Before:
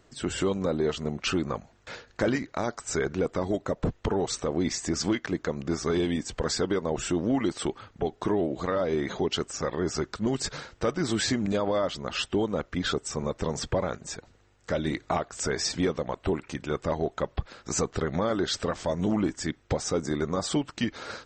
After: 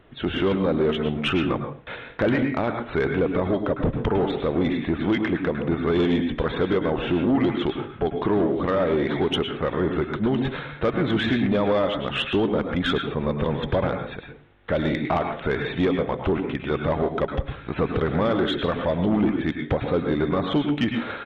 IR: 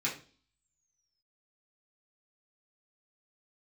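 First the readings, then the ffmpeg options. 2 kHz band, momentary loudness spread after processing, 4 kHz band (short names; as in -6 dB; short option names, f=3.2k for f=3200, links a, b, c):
+6.0 dB, 5 LU, +2.0 dB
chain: -filter_complex "[0:a]aresample=8000,aresample=44100,asplit=2[a][b];[1:a]atrim=start_sample=2205,adelay=101[c];[b][c]afir=irnorm=-1:irlink=0,volume=-11dB[d];[a][d]amix=inputs=2:normalize=0,asoftclip=type=tanh:threshold=-19.5dB,volume=6dB"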